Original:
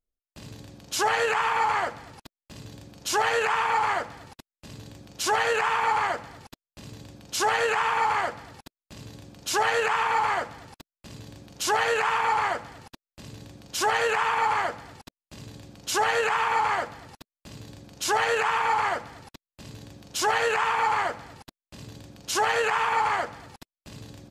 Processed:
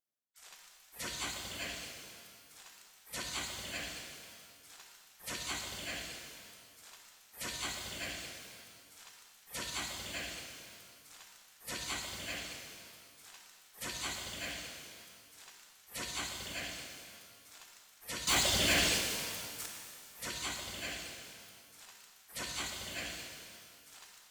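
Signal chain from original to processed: spectral gate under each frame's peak -25 dB weak; reverb removal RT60 1.8 s; 18.27–19.66 sample leveller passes 5; shimmer reverb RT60 2.2 s, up +12 st, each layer -8 dB, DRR 1.5 dB

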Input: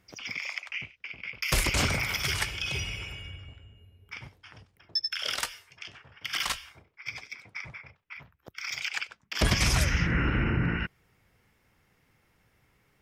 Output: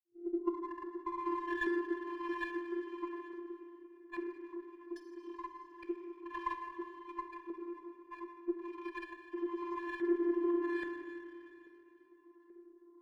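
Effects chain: tape start at the beginning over 2.38 s; low-pass opened by the level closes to 670 Hz, open at -25 dBFS; reverb removal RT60 0.82 s; limiter -20.5 dBFS, peak gain reduction 9.5 dB; compressor 6:1, threshold -44 dBFS, peak gain reduction 17 dB; tube stage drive 38 dB, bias 0.7; vocoder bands 32, square 345 Hz; LFO low-pass saw up 1.2 Hz 400–1900 Hz; plate-style reverb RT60 2.9 s, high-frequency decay 0.95×, DRR 4.5 dB; running maximum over 3 samples; gain +11.5 dB

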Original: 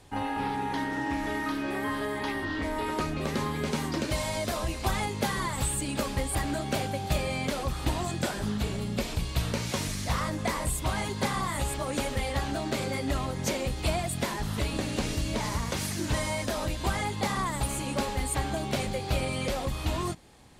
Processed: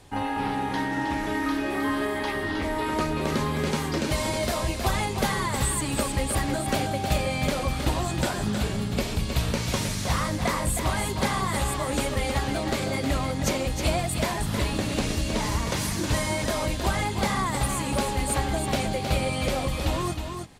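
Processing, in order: echo 0.315 s -6.5 dB; gain +3 dB

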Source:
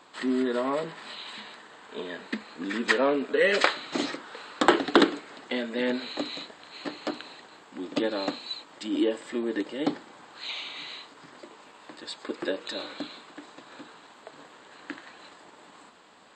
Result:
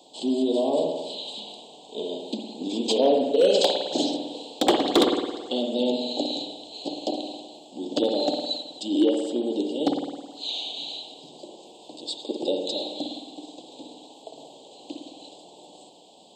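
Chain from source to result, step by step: elliptic band-stop 780–3200 Hz, stop band 50 dB; hard clip -18 dBFS, distortion -14 dB; HPF 320 Hz 6 dB/oct; spring tank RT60 1.2 s, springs 53 ms, chirp 40 ms, DRR 2.5 dB; gain +6.5 dB

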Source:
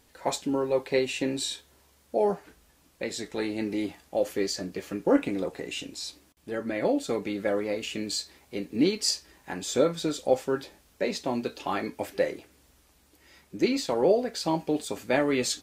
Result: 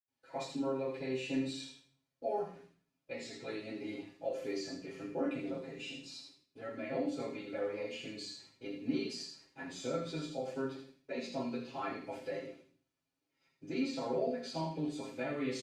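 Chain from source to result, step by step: HPF 110 Hz 12 dB/oct; gate -53 dBFS, range -15 dB; LPF 8000 Hz 12 dB/oct; tilt shelf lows -5 dB, about 860 Hz; comb 7.5 ms, depth 64%; limiter -17 dBFS, peak gain reduction 10.5 dB; thin delay 80 ms, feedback 30%, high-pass 1900 Hz, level -5 dB; reverb RT60 0.45 s, pre-delay 76 ms; gain +14.5 dB; Opus 64 kbps 48000 Hz

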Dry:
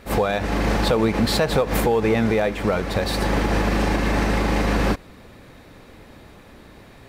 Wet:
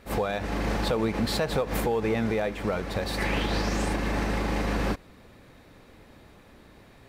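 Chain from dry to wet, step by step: 3.17–3.92 bell 1800 Hz -> 9400 Hz +12.5 dB 0.54 oct; gain -7 dB

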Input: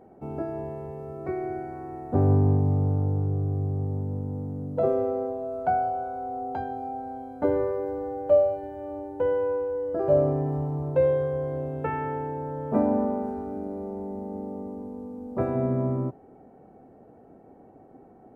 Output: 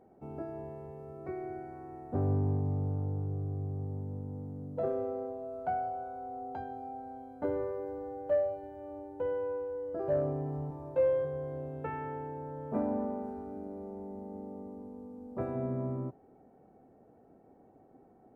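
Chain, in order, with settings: soft clip -10.5 dBFS, distortion -26 dB; 10.69–11.25 doubler 17 ms -4 dB; gain -8.5 dB

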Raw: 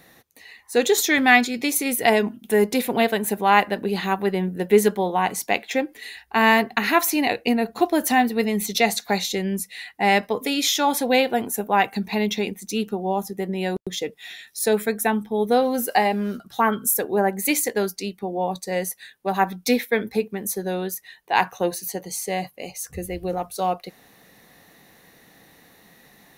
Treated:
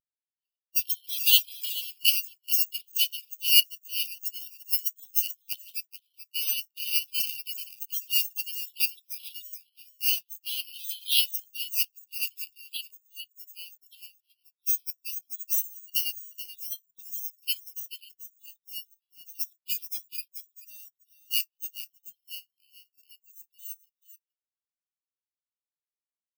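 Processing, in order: on a send: echo 0.432 s -5.5 dB; on the sum: spectral gate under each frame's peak -15 dB weak; in parallel at -9 dB: soft clip -25.5 dBFS, distortion -11 dB; on the sum: careless resampling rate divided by 6×, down filtered, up zero stuff; EQ curve 230 Hz 0 dB, 1700 Hz -10 dB, 2900 Hz +14 dB, 7200 Hz +5 dB, 13000 Hz +10 dB; spectral expander 2.5:1; gain -13 dB

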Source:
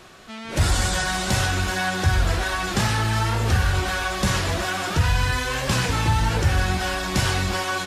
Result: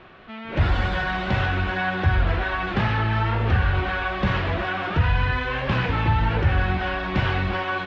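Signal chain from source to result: LPF 3000 Hz 24 dB/oct

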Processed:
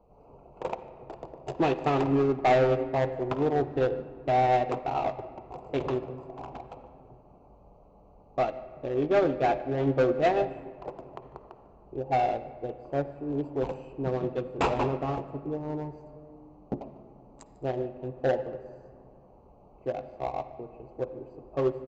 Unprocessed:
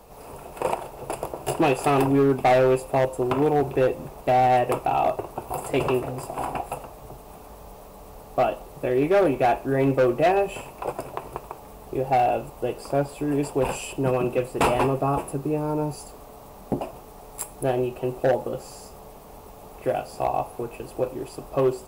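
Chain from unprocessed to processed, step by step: Wiener smoothing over 25 samples; echo 0.148 s -22 dB; on a send at -9.5 dB: reverb RT60 2.1 s, pre-delay 47 ms; on the sum: downsampling 16000 Hz; upward expander 1.5:1, over -31 dBFS; gain -3 dB

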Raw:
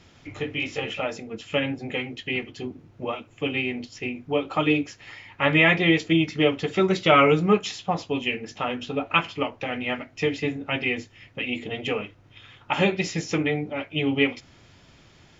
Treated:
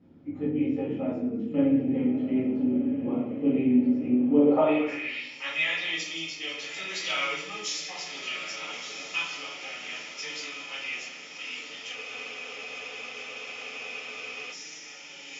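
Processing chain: reverse delay 0.105 s, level -11.5 dB; diffused feedback echo 1.32 s, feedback 65%, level -8 dB; band-pass sweep 250 Hz -> 5900 Hz, 4.29–5.38; reverb RT60 0.70 s, pre-delay 4 ms, DRR -7 dB; spectral freeze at 11.98, 2.55 s

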